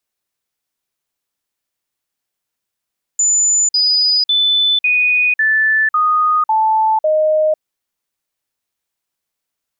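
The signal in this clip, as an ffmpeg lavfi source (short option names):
-f lavfi -i "aevalsrc='0.299*clip(min(mod(t,0.55),0.5-mod(t,0.55))/0.005,0,1)*sin(2*PI*7010*pow(2,-floor(t/0.55)/2)*mod(t,0.55))':d=4.4:s=44100"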